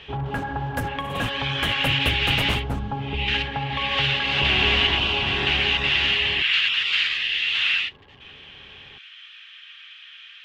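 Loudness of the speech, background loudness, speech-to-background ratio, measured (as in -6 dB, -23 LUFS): -21.0 LUFS, -28.5 LUFS, 7.5 dB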